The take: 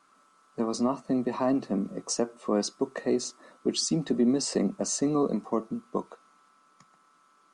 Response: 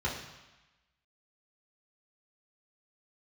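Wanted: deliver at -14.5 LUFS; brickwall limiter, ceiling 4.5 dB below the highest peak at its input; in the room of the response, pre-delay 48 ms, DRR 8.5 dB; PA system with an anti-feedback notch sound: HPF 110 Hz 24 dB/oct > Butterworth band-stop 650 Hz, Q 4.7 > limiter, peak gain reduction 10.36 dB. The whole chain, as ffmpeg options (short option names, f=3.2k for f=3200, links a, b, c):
-filter_complex "[0:a]alimiter=limit=-19dB:level=0:latency=1,asplit=2[a][b];[1:a]atrim=start_sample=2205,adelay=48[c];[b][c]afir=irnorm=-1:irlink=0,volume=-15.5dB[d];[a][d]amix=inputs=2:normalize=0,highpass=f=110:w=0.5412,highpass=f=110:w=1.3066,asuperstop=centerf=650:order=8:qfactor=4.7,volume=20.5dB,alimiter=limit=-5.5dB:level=0:latency=1"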